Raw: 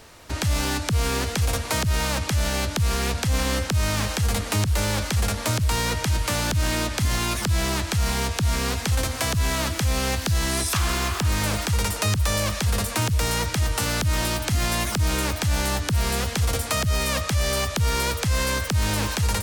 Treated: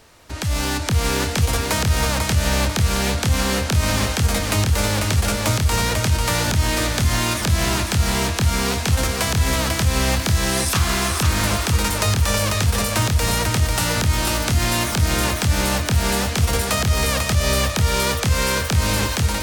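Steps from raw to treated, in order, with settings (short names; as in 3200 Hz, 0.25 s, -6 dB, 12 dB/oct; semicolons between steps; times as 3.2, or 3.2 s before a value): AGC gain up to 6 dB; lo-fi delay 0.494 s, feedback 35%, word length 8-bit, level -4 dB; gain -3 dB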